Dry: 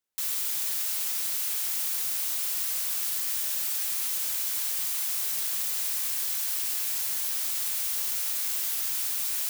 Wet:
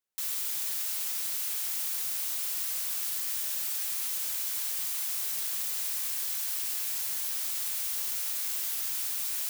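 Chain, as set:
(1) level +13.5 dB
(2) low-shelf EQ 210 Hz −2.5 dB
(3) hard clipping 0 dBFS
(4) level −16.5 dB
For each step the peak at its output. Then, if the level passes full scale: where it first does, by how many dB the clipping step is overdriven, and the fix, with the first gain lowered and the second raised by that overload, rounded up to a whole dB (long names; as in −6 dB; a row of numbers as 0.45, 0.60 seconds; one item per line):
−2.5, −2.5, −2.5, −19.0 dBFS
no step passes full scale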